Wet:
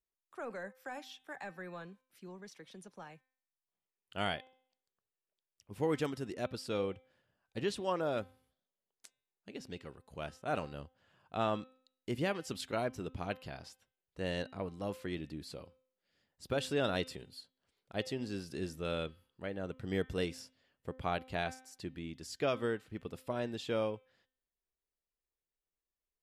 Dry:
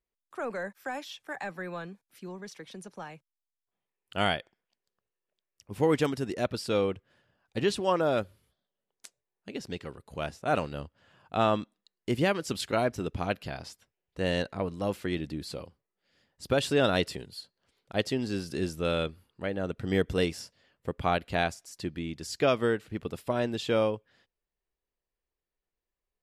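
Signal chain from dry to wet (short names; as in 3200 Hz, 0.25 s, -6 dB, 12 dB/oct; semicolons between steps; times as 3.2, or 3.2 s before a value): de-hum 258.8 Hz, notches 15; gain -8 dB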